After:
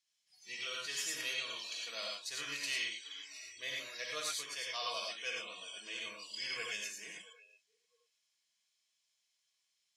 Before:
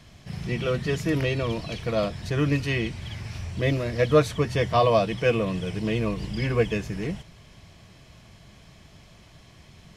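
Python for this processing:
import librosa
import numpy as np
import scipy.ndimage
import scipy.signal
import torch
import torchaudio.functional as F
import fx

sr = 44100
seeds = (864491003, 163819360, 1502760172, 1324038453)

p1 = fx.rider(x, sr, range_db=3, speed_s=2.0)
p2 = fx.tilt_eq(p1, sr, slope=2.0)
p3 = p2 + fx.echo_feedback(p2, sr, ms=672, feedback_pct=27, wet_db=-17, dry=0)
p4 = fx.noise_reduce_blind(p3, sr, reduce_db=25)
p5 = fx.bandpass_q(p4, sr, hz=6600.0, q=0.9)
p6 = fx.rev_gated(p5, sr, seeds[0], gate_ms=130, shape='rising', drr_db=-1.5)
y = p6 * 10.0 ** (-5.0 / 20.0)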